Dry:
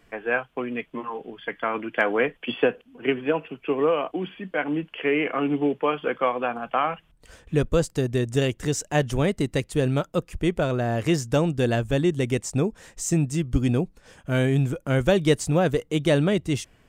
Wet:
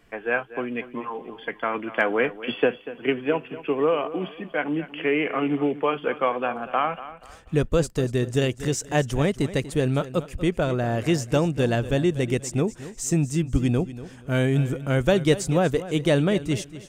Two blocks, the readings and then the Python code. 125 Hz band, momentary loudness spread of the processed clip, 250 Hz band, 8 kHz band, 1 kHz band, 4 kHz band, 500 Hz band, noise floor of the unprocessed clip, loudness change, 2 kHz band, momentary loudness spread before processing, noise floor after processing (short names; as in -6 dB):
0.0 dB, 8 LU, 0.0 dB, 0.0 dB, 0.0 dB, 0.0 dB, 0.0 dB, -60 dBFS, 0.0 dB, 0.0 dB, 8 LU, -47 dBFS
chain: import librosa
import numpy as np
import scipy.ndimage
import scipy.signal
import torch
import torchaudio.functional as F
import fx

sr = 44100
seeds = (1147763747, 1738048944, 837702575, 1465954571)

y = fx.echo_feedback(x, sr, ms=240, feedback_pct=30, wet_db=-15)